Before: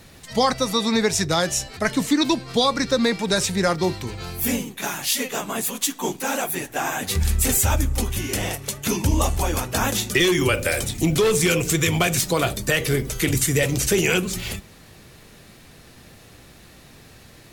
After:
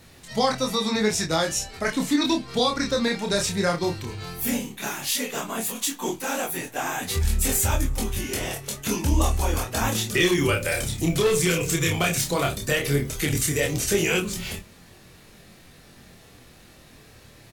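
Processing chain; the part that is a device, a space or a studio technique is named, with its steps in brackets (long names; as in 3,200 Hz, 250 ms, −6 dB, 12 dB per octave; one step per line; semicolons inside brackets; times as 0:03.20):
double-tracked vocal (double-tracking delay 28 ms −11 dB; chorus effect 0.13 Hz, depth 7.4 ms)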